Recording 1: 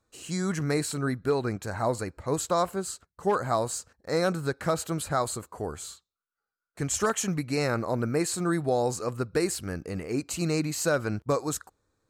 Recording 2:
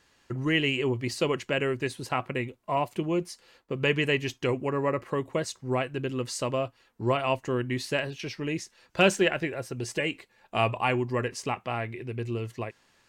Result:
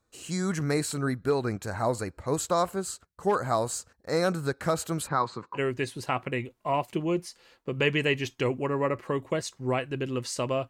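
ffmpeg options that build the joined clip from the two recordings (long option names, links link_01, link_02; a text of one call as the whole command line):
ffmpeg -i cue0.wav -i cue1.wav -filter_complex "[0:a]asplit=3[link_01][link_02][link_03];[link_01]afade=type=out:start_time=5.06:duration=0.02[link_04];[link_02]highpass=frequency=120:width=0.5412,highpass=frequency=120:width=1.3066,equalizer=frequency=640:width_type=q:width=4:gain=-9,equalizer=frequency=1000:width_type=q:width=4:gain=9,equalizer=frequency=3100:width_type=q:width=4:gain=-9,lowpass=frequency=4300:width=0.5412,lowpass=frequency=4300:width=1.3066,afade=type=in:start_time=5.06:duration=0.02,afade=type=out:start_time=5.6:duration=0.02[link_05];[link_03]afade=type=in:start_time=5.6:duration=0.02[link_06];[link_04][link_05][link_06]amix=inputs=3:normalize=0,apad=whole_dur=10.69,atrim=end=10.69,atrim=end=5.6,asetpts=PTS-STARTPTS[link_07];[1:a]atrim=start=1.57:end=6.72,asetpts=PTS-STARTPTS[link_08];[link_07][link_08]acrossfade=duration=0.06:curve1=tri:curve2=tri" out.wav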